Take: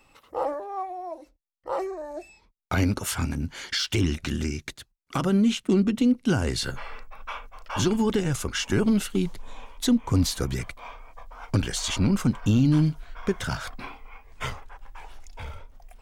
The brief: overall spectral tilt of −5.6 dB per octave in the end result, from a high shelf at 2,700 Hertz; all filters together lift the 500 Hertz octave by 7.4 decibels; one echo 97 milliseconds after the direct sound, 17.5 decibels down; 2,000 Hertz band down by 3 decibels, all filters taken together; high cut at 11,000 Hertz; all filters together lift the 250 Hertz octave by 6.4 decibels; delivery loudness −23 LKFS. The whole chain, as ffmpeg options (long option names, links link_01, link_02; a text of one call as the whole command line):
ffmpeg -i in.wav -af "lowpass=11000,equalizer=frequency=250:width_type=o:gain=6,equalizer=frequency=500:width_type=o:gain=7.5,equalizer=frequency=2000:width_type=o:gain=-8.5,highshelf=frequency=2700:gain=7.5,aecho=1:1:97:0.133,volume=-2.5dB" out.wav